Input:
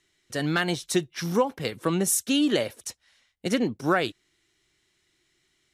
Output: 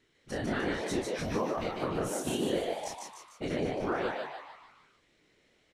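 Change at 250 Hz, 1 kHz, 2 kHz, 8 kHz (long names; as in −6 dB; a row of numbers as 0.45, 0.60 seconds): −8.0, −4.5, −7.5, −12.5 decibels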